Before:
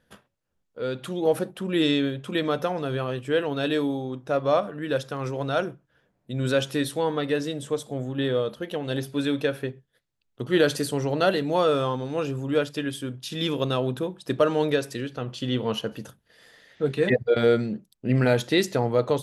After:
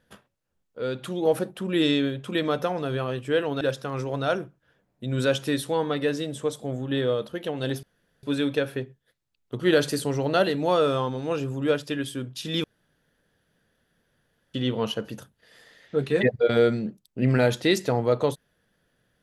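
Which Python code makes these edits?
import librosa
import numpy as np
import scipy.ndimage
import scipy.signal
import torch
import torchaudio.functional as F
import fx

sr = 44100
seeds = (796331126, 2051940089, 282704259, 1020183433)

y = fx.edit(x, sr, fx.cut(start_s=3.61, length_s=1.27),
    fx.insert_room_tone(at_s=9.1, length_s=0.4),
    fx.room_tone_fill(start_s=13.51, length_s=1.9), tone=tone)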